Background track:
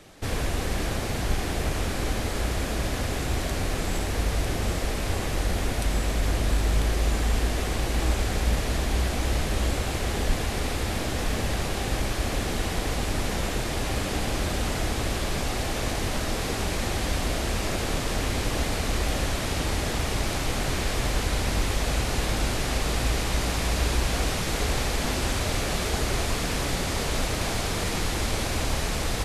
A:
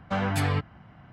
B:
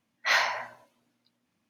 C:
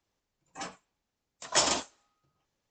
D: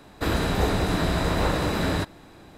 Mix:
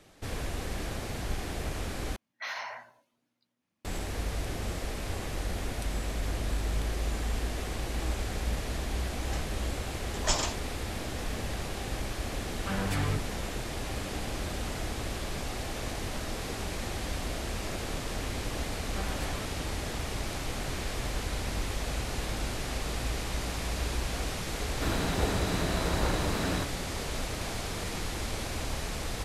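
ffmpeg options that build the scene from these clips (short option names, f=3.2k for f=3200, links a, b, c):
-filter_complex "[1:a]asplit=2[a][b];[0:a]volume=-7.5dB[c];[2:a]alimiter=limit=-21dB:level=0:latency=1:release=65[d];[a]acrossover=split=750[e][f];[e]adelay=30[g];[g][f]amix=inputs=2:normalize=0[h];[b]highpass=180[i];[c]asplit=2[j][k];[j]atrim=end=2.164[l];[d]atrim=end=1.69,asetpts=PTS-STARTPTS,volume=-6.5dB[m];[k]atrim=start=3.846[n];[3:a]atrim=end=2.7,asetpts=PTS-STARTPTS,volume=-4dB,afade=t=in:d=0.004:c=hsin,afade=t=out:st=2.696:d=0.004:c=hsin,adelay=8720[o];[h]atrim=end=1.12,asetpts=PTS-STARTPTS,volume=-5dB,afade=t=in:d=0.004:c=hsin,afade=t=out:st=1.116:d=0.004:c=hsin,adelay=12550[p];[i]atrim=end=1.12,asetpts=PTS-STARTPTS,volume=-12dB,afade=t=in:d=0.004:c=hsin,afade=t=out:st=1.116:d=0.004:c=hsin,adelay=18850[q];[4:a]atrim=end=2.57,asetpts=PTS-STARTPTS,volume=-7dB,afade=t=in:d=0.004:c=hsin,afade=t=out:st=2.566:d=0.004:c=hsin,adelay=24600[r];[l][m]acrossfade=d=0.004:c1=hsin:c2=hsin[s];[s][n]acrossfade=d=0.004:c1=hsin:c2=hsin[t];[t][o][p][q][r]amix=inputs=5:normalize=0"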